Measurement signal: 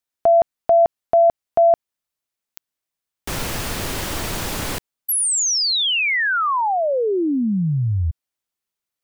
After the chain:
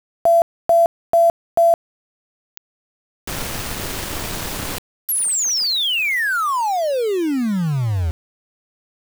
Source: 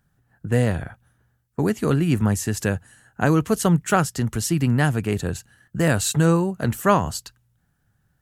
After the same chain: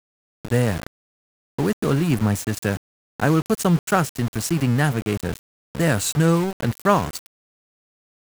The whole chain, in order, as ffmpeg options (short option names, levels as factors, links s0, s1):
-af "aeval=exprs='val(0)*gte(abs(val(0)),0.0501)':c=same"